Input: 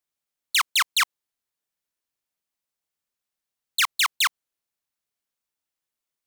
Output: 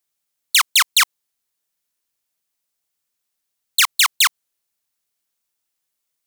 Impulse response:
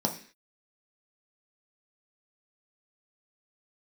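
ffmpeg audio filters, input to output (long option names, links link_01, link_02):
-filter_complex "[0:a]asettb=1/sr,asplit=3[link_01][link_02][link_03];[link_01]atrim=end=0.894[link_04];[link_02]atrim=start=0.89:end=3.8,asetpts=PTS-STARTPTS,afade=type=in:duration=0.004:curve=qsin,afade=type=out:start_time=2.906:duration=0.004:curve=qsin,acrusher=bits=6:mode=log:mix=0:aa=0.000001[link_05];[link_03]atrim=start=3.796[link_06];[link_04][link_05]acrossfade=duration=0.004:curve1=hsin:curve2=qsin[link_07];[link_07][link_06]acrossfade=duration=0.004:curve1=qsin:curve2=hsin,highshelf=frequency=3700:gain=7,volume=3.5dB"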